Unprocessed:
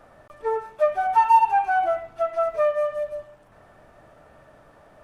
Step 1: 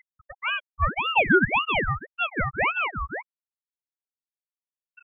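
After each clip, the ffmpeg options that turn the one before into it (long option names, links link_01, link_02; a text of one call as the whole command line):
ffmpeg -i in.wav -af "acompressor=mode=upward:threshold=-23dB:ratio=2.5,afftfilt=real='re*gte(hypot(re,im),0.178)':imag='im*gte(hypot(re,im),0.178)':win_size=1024:overlap=0.75,aeval=exprs='val(0)*sin(2*PI*1300*n/s+1300*0.6/1.8*sin(2*PI*1.8*n/s))':channel_layout=same" out.wav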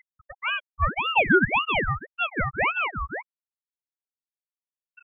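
ffmpeg -i in.wav -af anull out.wav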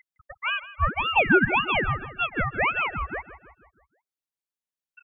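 ffmpeg -i in.wav -filter_complex "[0:a]asplit=2[link_01][link_02];[link_02]adelay=160,lowpass=frequency=3100:poles=1,volume=-14.5dB,asplit=2[link_03][link_04];[link_04]adelay=160,lowpass=frequency=3100:poles=1,volume=0.53,asplit=2[link_05][link_06];[link_06]adelay=160,lowpass=frequency=3100:poles=1,volume=0.53,asplit=2[link_07][link_08];[link_08]adelay=160,lowpass=frequency=3100:poles=1,volume=0.53,asplit=2[link_09][link_10];[link_10]adelay=160,lowpass=frequency=3100:poles=1,volume=0.53[link_11];[link_01][link_03][link_05][link_07][link_09][link_11]amix=inputs=6:normalize=0" out.wav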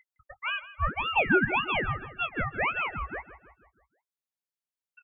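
ffmpeg -i in.wav -filter_complex "[0:a]asplit=2[link_01][link_02];[link_02]adelay=19,volume=-13dB[link_03];[link_01][link_03]amix=inputs=2:normalize=0,volume=-4.5dB" out.wav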